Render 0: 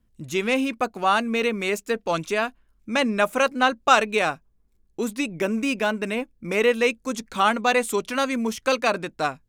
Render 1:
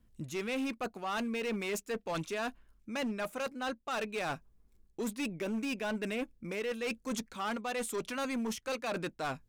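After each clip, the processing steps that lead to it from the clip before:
reversed playback
downward compressor 12 to 1, threshold −30 dBFS, peak gain reduction 20 dB
reversed playback
hard clipping −30.5 dBFS, distortion −12 dB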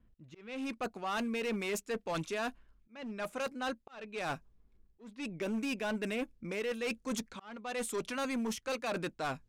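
volume swells 434 ms
low-pass that shuts in the quiet parts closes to 2,600 Hz, open at −33 dBFS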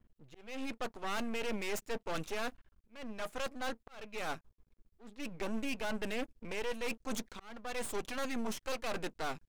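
half-wave rectification
level +2.5 dB

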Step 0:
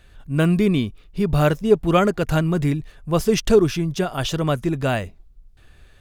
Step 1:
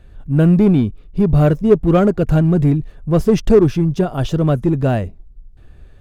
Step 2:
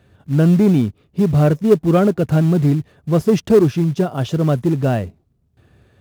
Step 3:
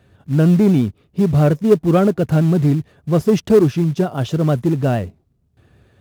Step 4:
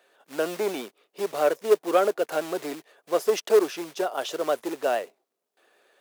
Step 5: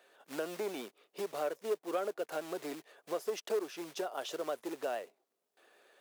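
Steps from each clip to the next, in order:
tilt shelving filter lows +7.5 dB; in parallel at −4 dB: hard clipping −11.5 dBFS, distortion −9 dB; on the sum: level −3.5 dB
high-pass filter 88 Hz 24 dB per octave; in parallel at −6 dB: floating-point word with a short mantissa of 2 bits; on the sum: level −4.5 dB
pitch vibrato 8.7 Hz 40 cents
high-pass filter 450 Hz 24 dB per octave; high-shelf EQ 5,800 Hz +4 dB; level −2 dB
downward compressor 2 to 1, threshold −39 dBFS, peak gain reduction 14 dB; level −2 dB

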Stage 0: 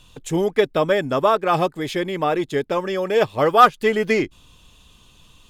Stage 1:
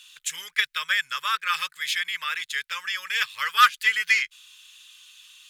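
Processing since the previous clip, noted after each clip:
inverse Chebyshev high-pass filter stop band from 770 Hz, stop band 40 dB
level +5.5 dB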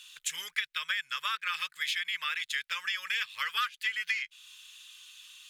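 dynamic equaliser 2,700 Hz, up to +6 dB, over −35 dBFS, Q 0.89
downward compressor 6 to 1, threshold −28 dBFS, peak gain reduction 19 dB
level −1.5 dB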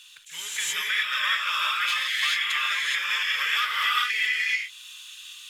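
reverb whose tail is shaped and stops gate 450 ms rising, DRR −6 dB
level that may rise only so fast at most 140 dB per second
level +1.5 dB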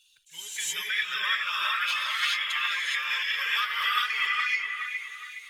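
spectral dynamics exaggerated over time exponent 1.5
delay with a low-pass on its return 416 ms, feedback 39%, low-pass 2,300 Hz, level −3.5 dB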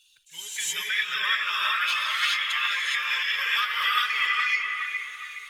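comb and all-pass reverb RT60 4.2 s, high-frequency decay 0.35×, pre-delay 110 ms, DRR 11 dB
level +2 dB

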